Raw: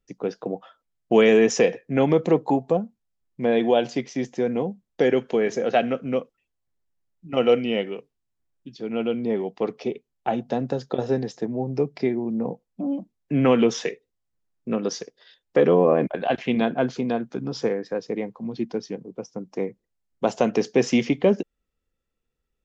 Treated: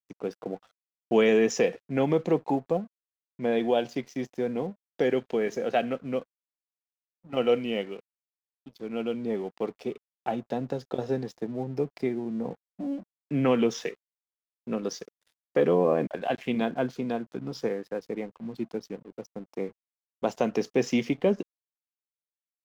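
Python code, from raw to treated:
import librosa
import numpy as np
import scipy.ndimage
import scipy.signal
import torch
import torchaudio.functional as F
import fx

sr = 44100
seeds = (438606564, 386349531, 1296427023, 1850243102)

y = np.sign(x) * np.maximum(np.abs(x) - 10.0 ** (-47.5 / 20.0), 0.0)
y = F.gain(torch.from_numpy(y), -5.0).numpy()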